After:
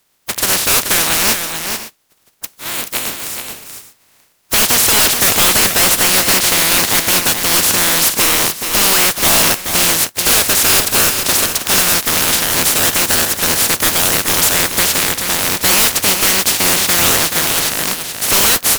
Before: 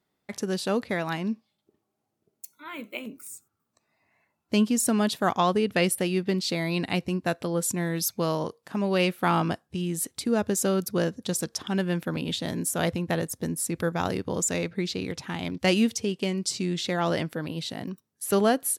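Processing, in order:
compressing power law on the bin magnitudes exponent 0.13
sine wavefolder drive 19 dB, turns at −1.5 dBFS
on a send: multi-tap delay 430/511/548 ms −7/−18.5/−18 dB
on the sum: level −5.5 dB

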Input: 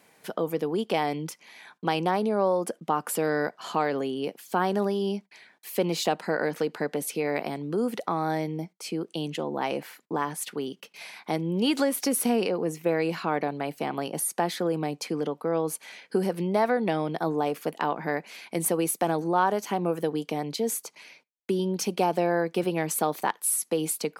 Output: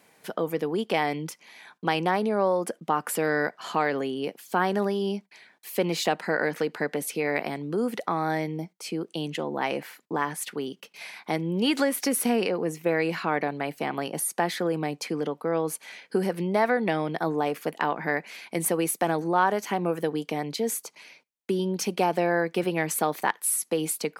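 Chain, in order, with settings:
dynamic equaliser 1,900 Hz, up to +6 dB, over −46 dBFS, Q 1.7

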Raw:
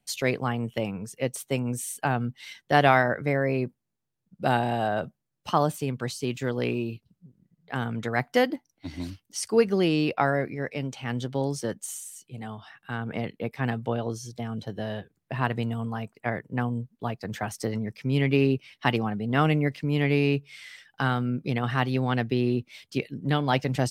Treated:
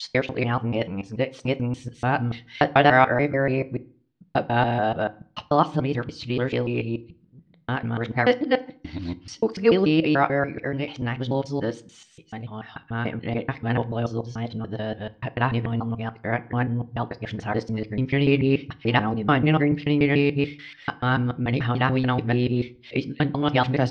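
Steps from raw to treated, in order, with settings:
reversed piece by piece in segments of 145 ms
low-pass filter 4,400 Hz 24 dB per octave
convolution reverb RT60 0.45 s, pre-delay 3 ms, DRR 13 dB
level +3.5 dB

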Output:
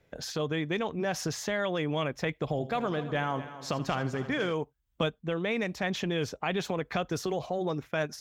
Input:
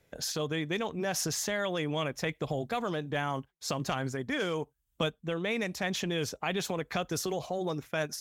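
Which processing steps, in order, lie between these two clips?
parametric band 11,000 Hz −12.5 dB 1.6 octaves
0:02.47–0:04.52: echo machine with several playback heads 81 ms, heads first and third, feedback 48%, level −14.5 dB
level +2 dB

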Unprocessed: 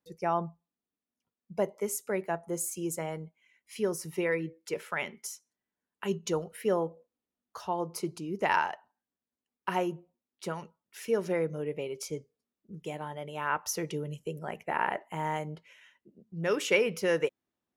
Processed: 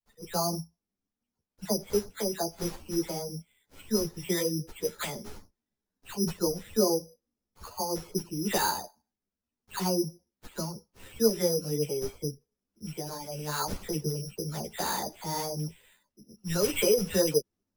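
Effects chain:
running median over 5 samples
all-pass dispersion lows, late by 122 ms, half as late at 1,700 Hz
bad sample-rate conversion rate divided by 8×, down none, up zero stuff
spectral tilt −3.5 dB per octave
string-ensemble chorus

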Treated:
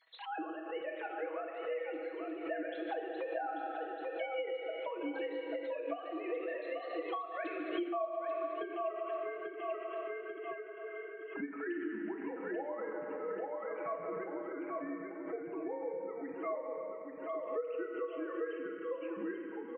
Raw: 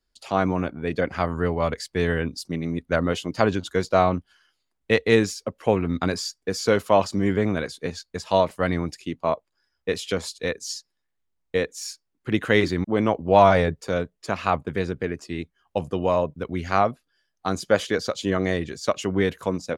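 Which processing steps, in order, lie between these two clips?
three sine waves on the formant tracks
source passing by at 0:08.05, 49 m/s, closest 9.7 metres
repeating echo 838 ms, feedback 24%, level −6.5 dB
dense smooth reverb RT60 2.1 s, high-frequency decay 1×, DRR 2 dB
downward compressor 16 to 1, threshold −51 dBFS, peak gain reduction 35.5 dB
comb filter 6.2 ms, depth 79%
background raised ahead of every attack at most 84 dB per second
level +13.5 dB

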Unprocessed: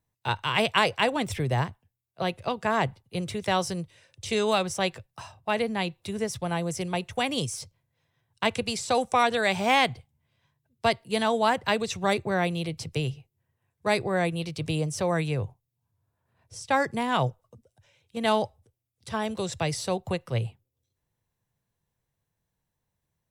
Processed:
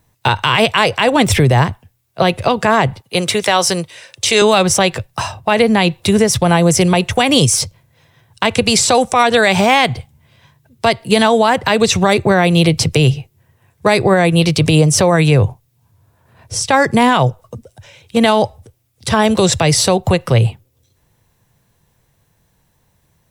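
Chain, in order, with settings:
0:03.01–0:04.42: high-pass filter 600 Hz 6 dB per octave
downward compressor 6 to 1, threshold −27 dBFS, peak gain reduction 10 dB
boost into a limiter +22.5 dB
level −1 dB

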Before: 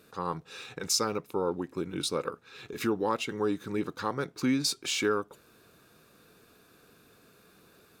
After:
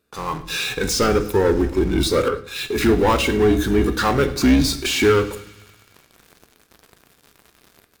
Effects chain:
sub-octave generator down 2 octaves, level −5 dB
automatic gain control gain up to 4 dB
leveller curve on the samples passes 2
de-essing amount 65%
in parallel at −11 dB: fuzz pedal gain 41 dB, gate −50 dBFS
on the sum: noise reduction from a noise print of the clip's start 8 dB
delay with a high-pass on its return 102 ms, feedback 73%, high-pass 1,800 Hz, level −19.5 dB
on a send at −9.5 dB: convolution reverb RT60 0.65 s, pre-delay 3 ms
0:02.28–0:02.82: on the sum: multiband upward and downward expander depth 70%

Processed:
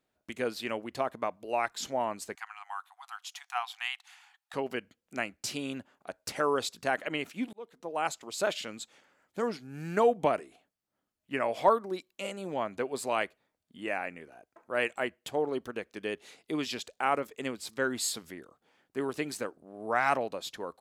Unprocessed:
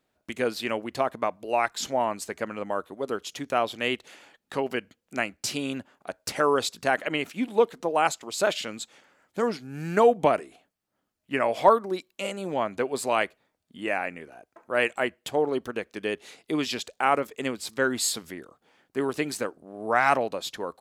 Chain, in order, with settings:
0:02.35–0:04.54: linear-phase brick-wall high-pass 710 Hz
0:07.53–0:08.21: fade in
level −5.5 dB

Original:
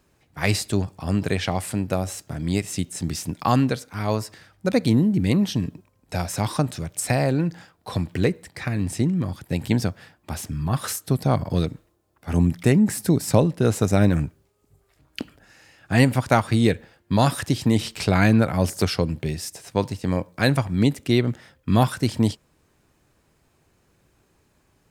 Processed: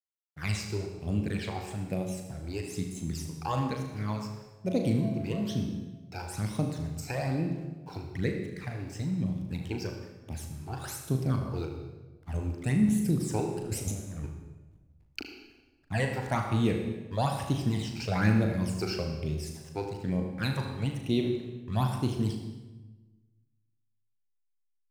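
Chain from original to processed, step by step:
0:04.66–0:05.61: steady tone 670 Hz −29 dBFS
0:13.52–0:15.20: compressor whose output falls as the input rises −25 dBFS, ratio −0.5
all-pass phaser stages 12, 1.1 Hz, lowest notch 180–1,700 Hz
slack as between gear wheels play −42 dBFS
flutter between parallel walls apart 6.5 metres, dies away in 0.3 s
on a send at −6 dB: convolution reverb RT60 1.2 s, pre-delay 62 ms
on the sum: level −8.5 dB

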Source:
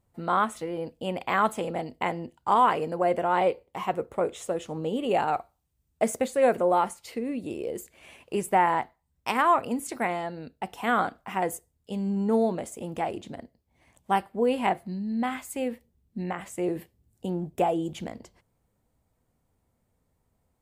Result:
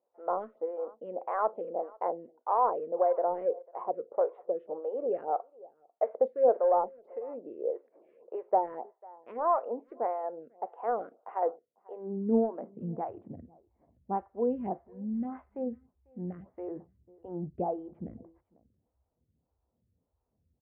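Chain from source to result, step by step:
high-pass filter sweep 510 Hz → 62 Hz, 0:11.76–0:13.61
in parallel at −7 dB: hard clipping −14.5 dBFS, distortion −13 dB
on the sum: Bessel low-pass filter 850 Hz, order 4
slap from a distant wall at 85 metres, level −24 dB
phaser with staggered stages 1.7 Hz
level −6.5 dB

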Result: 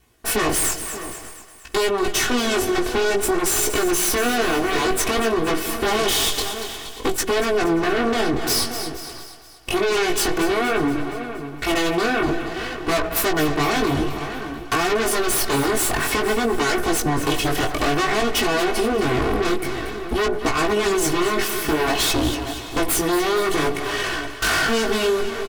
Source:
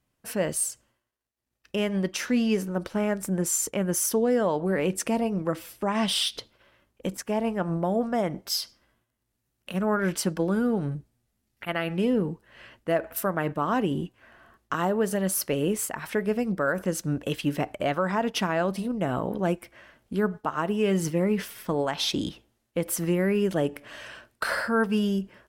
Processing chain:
lower of the sound and its delayed copy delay 2.7 ms
in parallel at −8 dB: sine wavefolder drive 15 dB, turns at −15 dBFS
on the sum: slap from a distant wall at 100 metres, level −14 dB
chorus effect 0.54 Hz, delay 16.5 ms, depth 6.1 ms
on a send: echo with a time of its own for lows and highs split 600 Hz, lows 154 ms, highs 235 ms, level −12 dB
on the sum: downward compressor, threshold −25 dBFS, peak gain reduction 5 dB
level +8.5 dB

